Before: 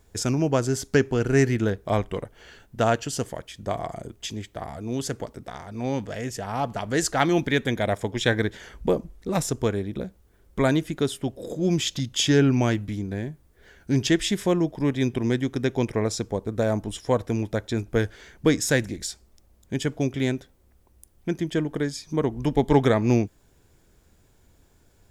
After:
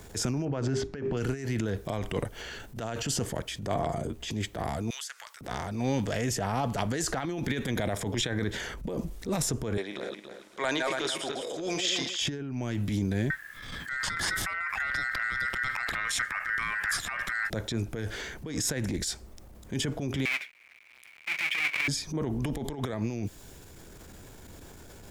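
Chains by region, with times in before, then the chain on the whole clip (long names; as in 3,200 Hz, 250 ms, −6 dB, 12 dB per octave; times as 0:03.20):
0:00.45–0:01.17: low-pass filter 2,700 Hz + mains-hum notches 50/100/150/200/250/300/350/400 Hz
0:03.74–0:04.31: high-shelf EQ 2,300 Hz −9.5 dB + double-tracking delay 13 ms −5 dB
0:04.90–0:05.41: high-pass filter 1,300 Hz 24 dB per octave + downward compressor 3 to 1, threshold −46 dBFS
0:09.77–0:12.21: feedback delay that plays each chunk backwards 141 ms, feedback 42%, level −5 dB + band-pass filter 680–7,300 Hz
0:13.30–0:17.50: ring modulation 1,700 Hz + low-shelf EQ 140 Hz +10 dB + compressor whose output falls as the input rises −34 dBFS
0:20.25–0:21.88: each half-wave held at its own peak + high-pass with resonance 2,300 Hz, resonance Q 11 + spectral tilt −3.5 dB per octave
whole clip: compressor whose output falls as the input rises −26 dBFS, ratio −0.5; transient designer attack −11 dB, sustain +4 dB; multiband upward and downward compressor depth 40%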